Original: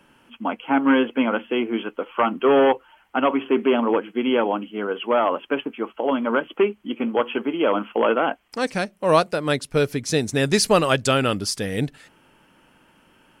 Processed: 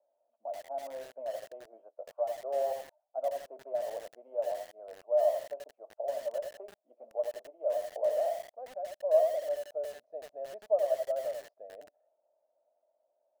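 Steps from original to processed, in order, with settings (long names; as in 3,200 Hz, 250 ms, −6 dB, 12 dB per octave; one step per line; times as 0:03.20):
flat-topped band-pass 630 Hz, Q 5.6
feedback echo at a low word length 84 ms, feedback 35%, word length 7 bits, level −4.5 dB
level −4 dB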